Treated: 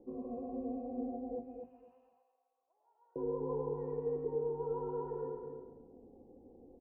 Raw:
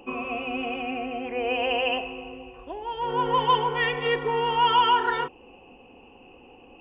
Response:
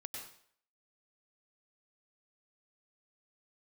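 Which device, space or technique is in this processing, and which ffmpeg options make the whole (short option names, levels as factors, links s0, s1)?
next room: -filter_complex "[0:a]lowpass=f=530:w=0.5412,lowpass=f=530:w=1.3066[s0];[1:a]atrim=start_sample=2205[s1];[s0][s1]afir=irnorm=-1:irlink=0,asettb=1/sr,asplit=3[s2][s3][s4];[s2]atrim=end=1.394[s5];[s3]atrim=start=1.39:end=3.16,asetpts=PTS-STARTPTS,afade=t=in:d=0.004:c=qsin,afade=t=out:st=1.766:d=0.004:c=qsin,highpass=f=1400:w=0.5412,highpass=f=1400:w=1.3066[s6];[s4]atrim=start=3.156[s7];[s5][s6]acrossfade=d=0.004:c1=hsin:c2=qsin[s8];[s8][s7]acrossfade=d=0.004:c1=qsin:c2=hsin,bandreject=f=50:t=h:w=6,bandreject=f=100:t=h:w=6,bandreject=f=150:t=h:w=6,bandreject=f=200:t=h:w=6,bandreject=f=250:t=h:w=6,asplit=2[s9][s10];[s10]adelay=246,lowpass=f=2000:p=1,volume=0.501,asplit=2[s11][s12];[s12]adelay=246,lowpass=f=2000:p=1,volume=0.22,asplit=2[s13][s14];[s14]adelay=246,lowpass=f=2000:p=1,volume=0.22[s15];[s9][s11][s13][s15]amix=inputs=4:normalize=0,volume=0.75"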